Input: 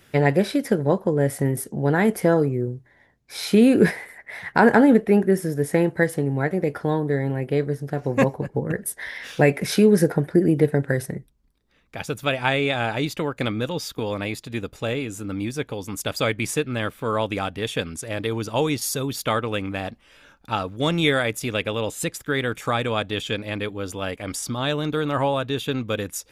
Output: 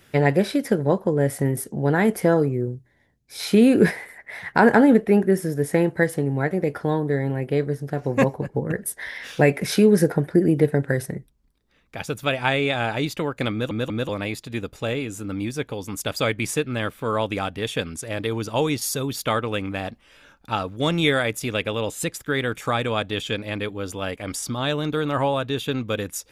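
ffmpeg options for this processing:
-filter_complex "[0:a]asettb=1/sr,asplit=3[a][b][c];[a]atrim=end=2.754[d];[b]atrim=start=2.75:end=3.4,asetpts=PTS-STARTPTS,afade=t=in:d=0.004:c=qsin,afade=t=out:st=0.646:d=0.004:c=qsin,equalizer=f=1.2k:w=0.42:g=-9.5[e];[c]atrim=start=3.396[f];[d][e]acrossfade=d=0.004:c1=hsin:c2=qsin[g];[g][f]acrossfade=d=0.004:c1=qsin:c2=hsin,asplit=4[h][i][j][k];[h]atrim=end=13.712[l];[i]atrim=start=13.518:end=13.712[m];[j]atrim=start=13.518:end=13.712[n];[k]atrim=start=14.088[o];[l][m]acrossfade=d=0.004:c1=hsin:c2=hsin[p];[p][n]acrossfade=d=0.004:c1=hsin:c2=hsin[q];[q][o]acrossfade=d=0.004:c1=hsin:c2=hsin"

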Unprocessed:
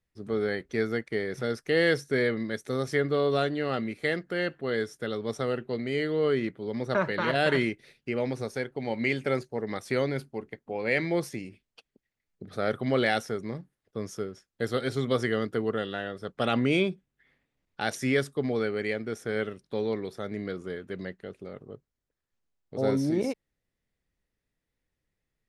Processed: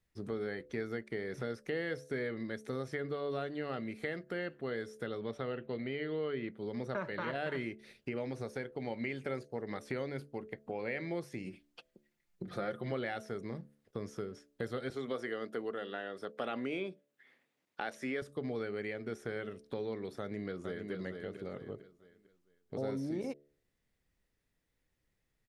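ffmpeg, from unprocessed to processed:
-filter_complex "[0:a]asettb=1/sr,asplit=3[a][b][c];[a]atrim=end=5.204[d];[b]atrim=start=5.2:end=6.51,asetpts=PTS-STARTPTS,afade=t=in:d=0.004:c=qsin,afade=t=out:st=1.306:d=0.004:c=qsin,highshelf=f=4.8k:t=q:w=1.5:g=-11[e];[c]atrim=start=6.506[f];[d][e]acrossfade=d=0.004:c1=hsin:c2=qsin[g];[g][f]acrossfade=d=0.004:c1=qsin:c2=hsin,asettb=1/sr,asplit=3[h][i][j];[h]atrim=end=11.464[k];[i]atrim=start=11.46:end=12.92,asetpts=PTS-STARTPTS,afade=t=in:d=0.004:c=qsin,afade=t=out:st=1.456:d=0.004:c=qsin,aecho=1:1:5.7:0.67,atrim=end_sample=64386[l];[j]atrim=start=12.916[m];[k][l]acrossfade=d=0.004:c1=hsin:c2=qsin[n];[n][m]acrossfade=d=0.004:c1=qsin:c2=hsin,asettb=1/sr,asplit=3[o][p][q];[o]atrim=end=14.904[r];[p]atrim=start=14.9:end=18.22,asetpts=PTS-STARTPTS,afade=t=in:d=0.004:c=qsin,afade=t=out:st=3.316:d=0.004:c=qsin,highpass=260[s];[q]atrim=start=18.216[t];[r][s]acrossfade=d=0.004:c1=hsin:c2=qsin[u];[u][t]acrossfade=d=0.004:c1=qsin:c2=hsin,asplit=2[v][w];[w]afade=t=in:st=20.19:d=0.01,afade=t=out:st=20.91:d=0.01,aecho=0:1:450|900|1350|1800:0.398107|0.119432|0.0358296|0.0107489[x];[v][x]amix=inputs=2:normalize=0,acompressor=threshold=-40dB:ratio=3,bandreject=f=72.25:t=h:w=4,bandreject=f=144.5:t=h:w=4,bandreject=f=216.75:t=h:w=4,bandreject=f=289:t=h:w=4,bandreject=f=361.25:t=h:w=4,bandreject=f=433.5:t=h:w=4,bandreject=f=505.75:t=h:w=4,bandreject=f=578:t=h:w=4,bandreject=f=650.25:t=h:w=4,acrossover=split=2900[y][z];[z]acompressor=threshold=-58dB:ratio=4:attack=1:release=60[aa];[y][aa]amix=inputs=2:normalize=0,volume=2dB"

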